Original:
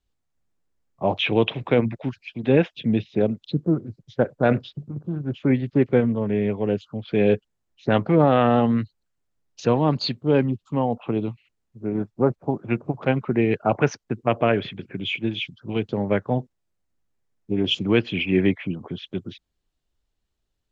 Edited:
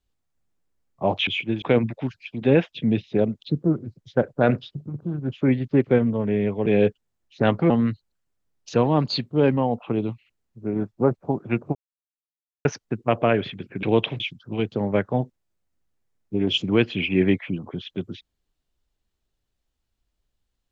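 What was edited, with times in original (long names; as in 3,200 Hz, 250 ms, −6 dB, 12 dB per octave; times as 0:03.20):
0:01.27–0:01.64: swap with 0:15.02–0:15.37
0:06.68–0:07.13: remove
0:08.17–0:08.61: remove
0:10.48–0:10.76: remove
0:12.94–0:13.84: silence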